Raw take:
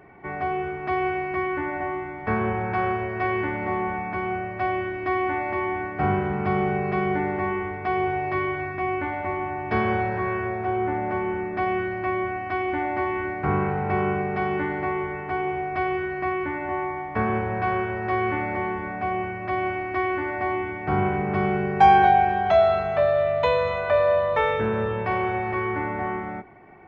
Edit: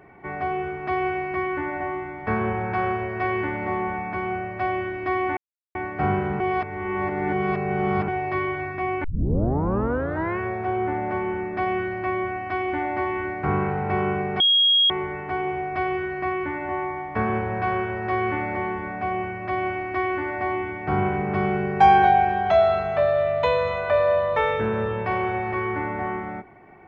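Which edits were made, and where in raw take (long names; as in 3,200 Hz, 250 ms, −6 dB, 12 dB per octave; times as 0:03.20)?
0:05.37–0:05.75: silence
0:06.40–0:08.08: reverse
0:09.04: tape start 1.35 s
0:14.40–0:14.90: beep over 3,280 Hz −14.5 dBFS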